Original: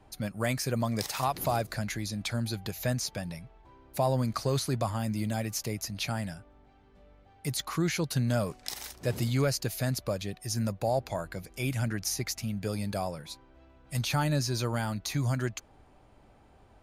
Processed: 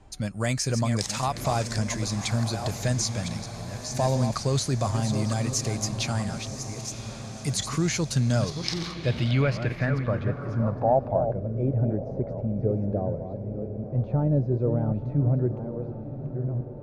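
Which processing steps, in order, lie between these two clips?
chunks repeated in reverse 692 ms, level -8 dB; bass shelf 130 Hz +8 dB; echo that smears into a reverb 1052 ms, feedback 58%, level -11 dB; low-pass sweep 7.4 kHz -> 490 Hz, 8.18–11.63 s; trim +1 dB

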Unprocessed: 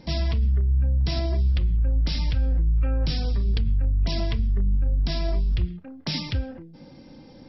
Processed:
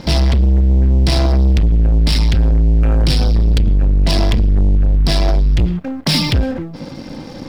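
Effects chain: waveshaping leveller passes 3; trim +6 dB

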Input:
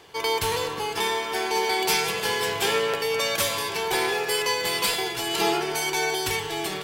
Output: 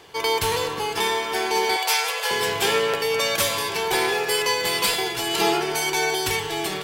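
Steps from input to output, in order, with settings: 1.76–2.31 s: elliptic high-pass 500 Hz, stop band 50 dB; trim +2.5 dB

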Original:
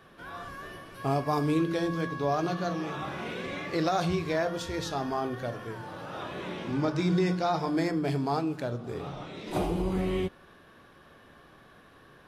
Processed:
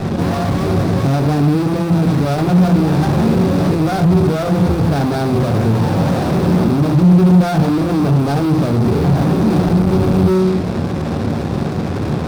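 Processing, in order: low-pass 1 kHz 12 dB/octave; de-hum 62.18 Hz, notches 30; compression, threshold -36 dBFS, peak gain reduction 12.5 dB; fuzz box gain 58 dB, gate -60 dBFS; valve stage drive 22 dB, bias 0.55; reverberation, pre-delay 3 ms, DRR 9.5 dB; sliding maximum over 17 samples; trim -1.5 dB

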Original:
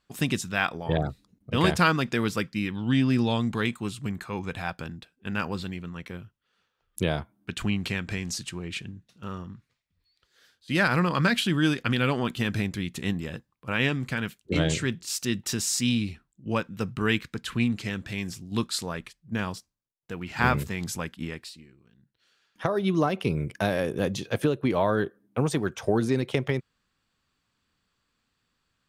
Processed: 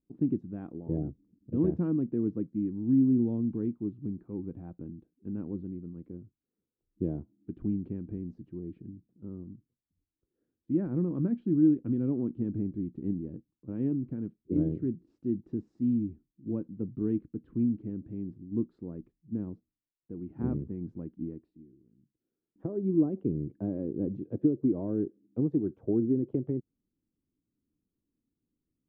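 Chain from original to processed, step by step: resonant low-pass 310 Hz, resonance Q 3.6; trim -8 dB

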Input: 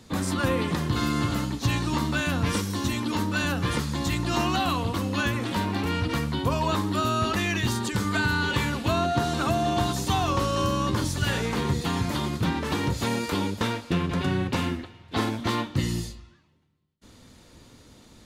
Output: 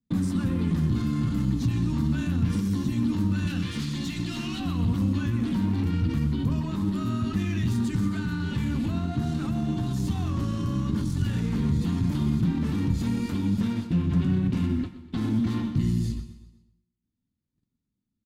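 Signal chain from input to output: compression 2.5:1, threshold -34 dBFS, peak gain reduction 10 dB; 3.47–4.60 s: frequency weighting D; valve stage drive 26 dB, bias 0.45; peak limiter -33.5 dBFS, peak gain reduction 9.5 dB; flange 0.73 Hz, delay 4.2 ms, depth 8.6 ms, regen -58%; gate -50 dBFS, range -46 dB; resonant low shelf 350 Hz +13.5 dB, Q 1.5; feedback delay 124 ms, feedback 45%, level -15 dB; on a send at -14 dB: reverberation RT60 0.90 s, pre-delay 87 ms; on the sum: trim +7.5 dB

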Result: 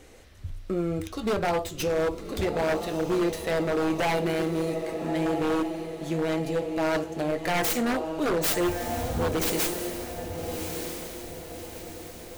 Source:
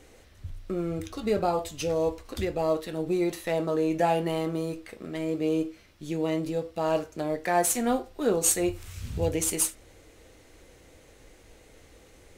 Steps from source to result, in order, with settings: tracing distortion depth 0.36 ms; echo that smears into a reverb 1245 ms, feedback 46%, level -8.5 dB; wavefolder -22 dBFS; trim +2.5 dB

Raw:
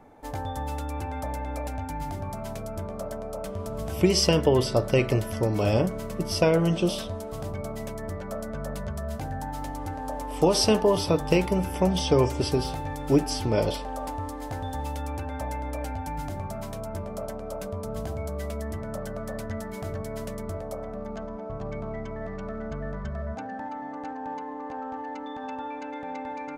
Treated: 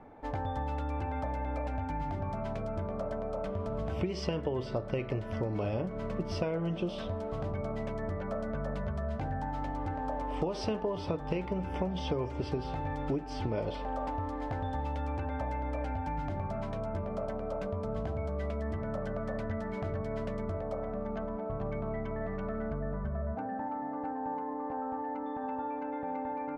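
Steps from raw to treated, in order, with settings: low-pass 2.7 kHz 12 dB/octave, from 22.72 s 1.3 kHz; compression 6:1, threshold -30 dBFS, peak gain reduction 14.5 dB

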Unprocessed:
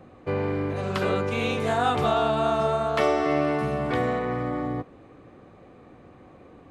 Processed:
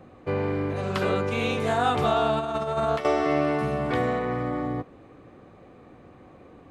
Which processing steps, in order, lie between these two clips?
2.39–3.05 s: compressor with a negative ratio -26 dBFS, ratio -0.5

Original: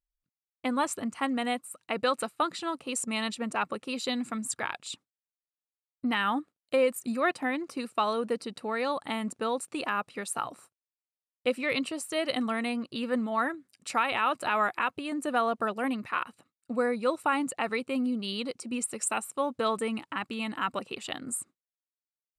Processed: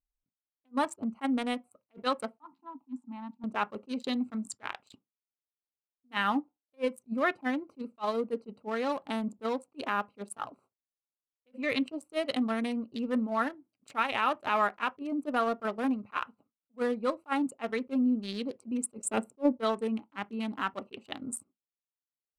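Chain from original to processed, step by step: local Wiener filter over 25 samples; 2.37–3.44 s: two resonant band-passes 490 Hz, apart 1.8 oct; 18.98–19.57 s: resonant low shelf 650 Hz +9 dB, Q 1.5; transient shaper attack -2 dB, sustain -6 dB; on a send at -11 dB: reverberation RT60 0.15 s, pre-delay 3 ms; on the sum: attacks held to a fixed rise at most 520 dB/s

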